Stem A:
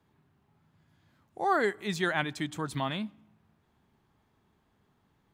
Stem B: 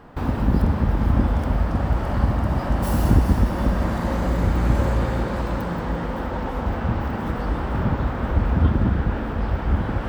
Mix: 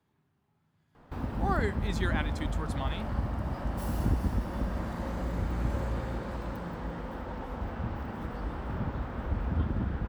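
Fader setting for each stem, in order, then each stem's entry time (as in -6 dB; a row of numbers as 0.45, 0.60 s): -5.0, -11.5 dB; 0.00, 0.95 s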